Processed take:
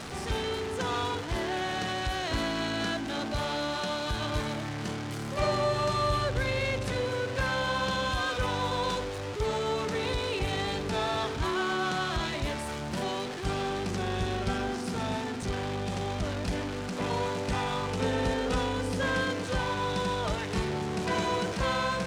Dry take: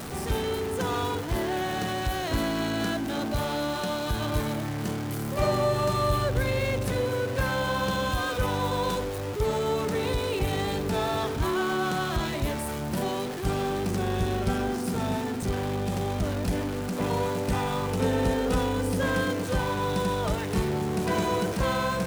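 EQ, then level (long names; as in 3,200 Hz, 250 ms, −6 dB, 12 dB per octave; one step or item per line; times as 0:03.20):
high-frequency loss of the air 98 metres
spectral tilt +2.5 dB per octave
low-shelf EQ 100 Hz +10 dB
−1.0 dB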